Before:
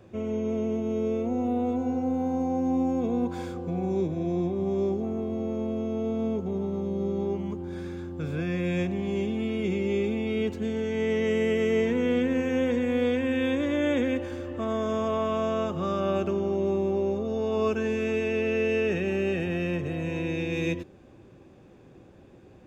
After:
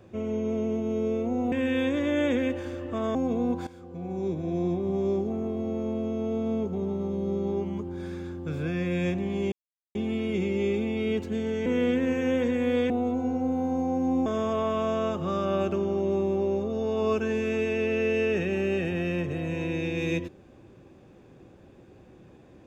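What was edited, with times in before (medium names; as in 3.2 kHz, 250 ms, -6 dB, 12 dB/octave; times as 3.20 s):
1.52–2.88 s: swap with 13.18–14.81 s
3.40–4.30 s: fade in, from -16 dB
9.25 s: insert silence 0.43 s
10.96–11.94 s: delete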